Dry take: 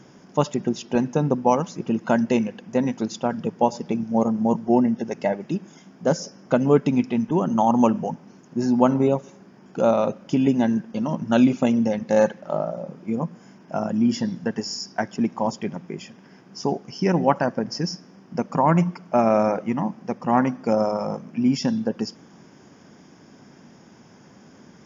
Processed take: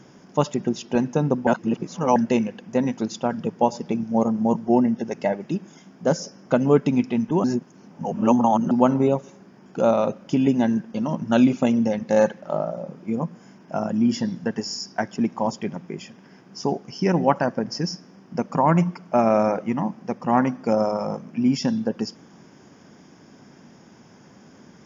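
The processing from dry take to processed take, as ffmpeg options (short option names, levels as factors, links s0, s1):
-filter_complex "[0:a]asplit=5[s0][s1][s2][s3][s4];[s0]atrim=end=1.472[s5];[s1]atrim=start=1.468:end=2.162,asetpts=PTS-STARTPTS,areverse[s6];[s2]atrim=start=2.158:end=7.442[s7];[s3]atrim=start=7.438:end=8.712,asetpts=PTS-STARTPTS,areverse[s8];[s4]atrim=start=8.708[s9];[s5][s6]acrossfade=d=0.004:c1=hsin:c2=hsin[s10];[s10][s7]acrossfade=d=0.004:c1=hsin:c2=hsin[s11];[s11][s8]acrossfade=d=0.004:c1=hsin:c2=hsin[s12];[s12][s9]acrossfade=d=0.004:c1=hsin:c2=hsin"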